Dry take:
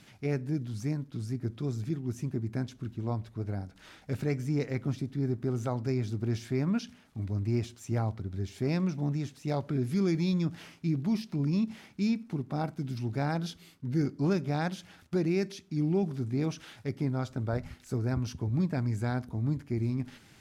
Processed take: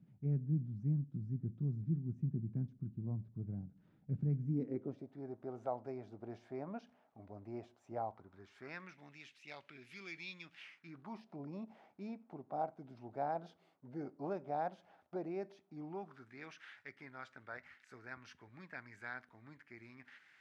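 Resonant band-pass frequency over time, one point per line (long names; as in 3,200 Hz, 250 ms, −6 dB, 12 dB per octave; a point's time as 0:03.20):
resonant band-pass, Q 2.8
0:04.41 160 Hz
0:05.11 700 Hz
0:07.99 700 Hz
0:09.16 2,500 Hz
0:10.63 2,500 Hz
0:11.28 700 Hz
0:15.71 700 Hz
0:16.34 1,800 Hz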